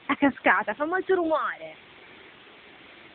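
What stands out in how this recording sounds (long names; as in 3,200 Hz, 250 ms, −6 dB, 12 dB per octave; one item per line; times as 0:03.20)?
tremolo saw up 1.3 Hz, depth 55%
a quantiser's noise floor 8 bits, dither triangular
AMR narrowband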